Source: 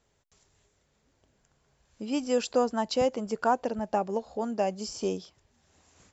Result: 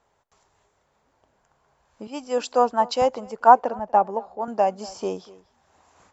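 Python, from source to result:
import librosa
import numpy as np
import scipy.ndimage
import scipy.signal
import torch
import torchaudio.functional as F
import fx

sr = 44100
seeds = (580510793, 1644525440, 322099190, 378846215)

y = fx.peak_eq(x, sr, hz=920.0, db=14.5, octaves=1.8)
y = y + 10.0 ** (-20.5 / 20.0) * np.pad(y, (int(241 * sr / 1000.0), 0))[:len(y)]
y = fx.band_widen(y, sr, depth_pct=70, at=(2.07, 4.48))
y = y * librosa.db_to_amplitude(-3.0)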